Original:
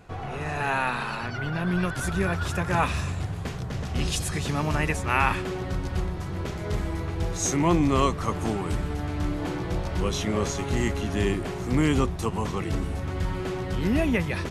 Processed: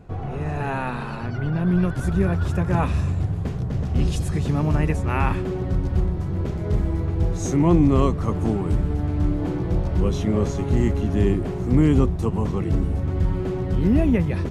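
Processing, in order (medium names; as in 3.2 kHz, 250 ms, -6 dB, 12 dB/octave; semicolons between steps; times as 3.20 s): tilt shelf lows +7.5 dB, about 720 Hz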